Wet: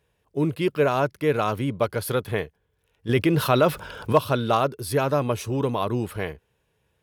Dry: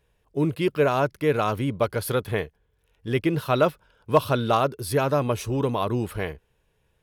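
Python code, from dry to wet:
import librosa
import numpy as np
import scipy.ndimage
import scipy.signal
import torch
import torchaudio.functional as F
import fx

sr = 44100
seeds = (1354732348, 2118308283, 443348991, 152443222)

y = scipy.signal.sosfilt(scipy.signal.butter(2, 68.0, 'highpass', fs=sr, output='sos'), x)
y = fx.env_flatten(y, sr, amount_pct=50, at=(3.09, 4.13))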